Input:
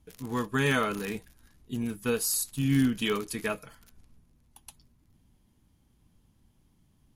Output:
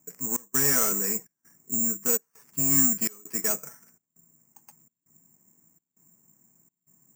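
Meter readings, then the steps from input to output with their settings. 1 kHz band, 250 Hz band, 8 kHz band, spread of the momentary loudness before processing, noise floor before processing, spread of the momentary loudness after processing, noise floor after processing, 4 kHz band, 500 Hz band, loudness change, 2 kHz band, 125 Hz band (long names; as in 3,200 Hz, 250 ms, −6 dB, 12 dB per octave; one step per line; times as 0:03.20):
−4.0 dB, −4.0 dB, +11.0 dB, 11 LU, −67 dBFS, 10 LU, −85 dBFS, −3.5 dB, −3.5 dB, +5.5 dB, −4.5 dB, −7.5 dB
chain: elliptic band-pass filter 150–2,100 Hz, stop band 40 dB
in parallel at −3.5 dB: wave folding −31.5 dBFS
on the sum: gate pattern "xx.xxxx.xx" 83 BPM −24 dB
bad sample-rate conversion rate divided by 6×, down filtered, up zero stuff
level −3.5 dB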